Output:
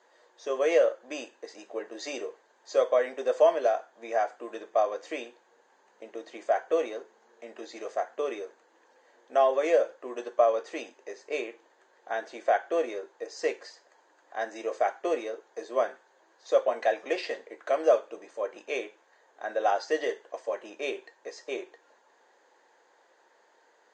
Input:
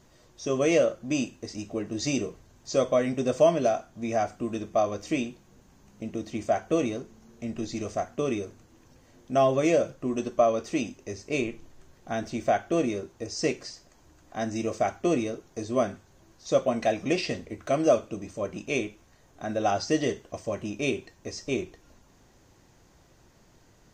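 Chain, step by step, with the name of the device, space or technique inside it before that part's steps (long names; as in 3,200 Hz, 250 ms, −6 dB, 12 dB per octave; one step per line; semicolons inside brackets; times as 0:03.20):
phone speaker on a table (loudspeaker in its box 410–7,100 Hz, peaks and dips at 490 Hz +6 dB, 890 Hz +8 dB, 1,700 Hz +9 dB, 2,600 Hz −3 dB, 5,600 Hz −10 dB)
level −3 dB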